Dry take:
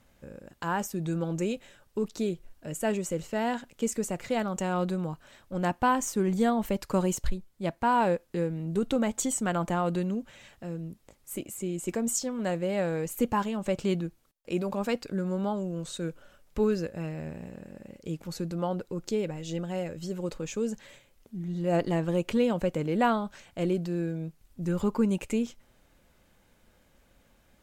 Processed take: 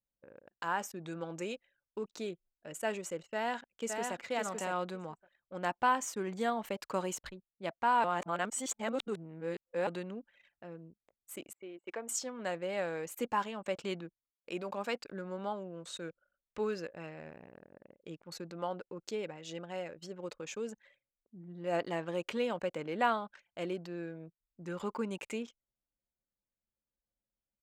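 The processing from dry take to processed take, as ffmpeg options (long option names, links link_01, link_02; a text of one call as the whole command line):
ffmpeg -i in.wav -filter_complex "[0:a]asplit=2[link_01][link_02];[link_02]afade=type=in:start_time=3.33:duration=0.01,afade=type=out:start_time=4.17:duration=0.01,aecho=0:1:560|1120|1680:0.630957|0.0946436|0.0141965[link_03];[link_01][link_03]amix=inputs=2:normalize=0,asettb=1/sr,asplit=3[link_04][link_05][link_06];[link_04]atrim=end=11.534[link_07];[link_05]atrim=start=11.53:end=12.09,asetpts=PTS-STARTPTS,afade=type=in:duration=0.004:curve=qsin,afade=type=out:start_time=0.556:duration=0.004:curve=qsin,highpass=380,lowpass=3300[link_08];[link_06]atrim=start=12.086[link_09];[link_07][link_08]acrossfade=duration=0.004:curve1=hsin:curve2=qsin[link_10];[link_10][link_09]acrossfade=duration=0.004:curve1=qsin:curve2=hsin,asplit=3[link_11][link_12][link_13];[link_11]atrim=end=8.042[link_14];[link_12]atrim=start=8.038:end=9.872,asetpts=PTS-STARTPTS,areverse[link_15];[link_13]atrim=start=9.868[link_16];[link_14][link_15]acrossfade=duration=0.004:curve1=hsin:curve2=hsin[link_17];[link_17][link_16]acrossfade=duration=0.004:curve1=hsin:curve2=hsin,highpass=frequency=1000:poles=1,aemphasis=mode=reproduction:type=cd,anlmdn=0.00398" out.wav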